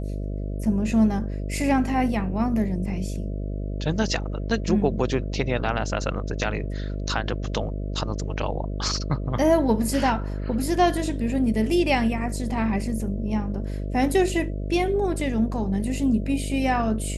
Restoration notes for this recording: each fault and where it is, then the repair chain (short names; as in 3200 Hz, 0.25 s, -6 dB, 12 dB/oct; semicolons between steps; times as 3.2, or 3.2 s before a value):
buzz 50 Hz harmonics 13 -29 dBFS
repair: de-hum 50 Hz, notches 13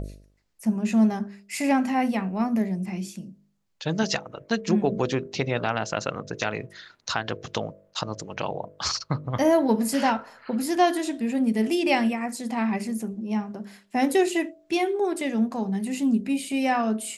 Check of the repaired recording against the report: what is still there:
none